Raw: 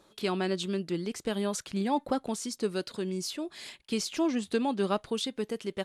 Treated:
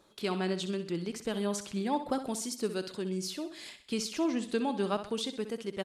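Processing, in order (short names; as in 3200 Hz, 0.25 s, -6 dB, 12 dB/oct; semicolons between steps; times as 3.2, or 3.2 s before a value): 2.1–2.75 high shelf 10000 Hz +10 dB; feedback echo 64 ms, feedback 42%, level -11 dB; gain -2.5 dB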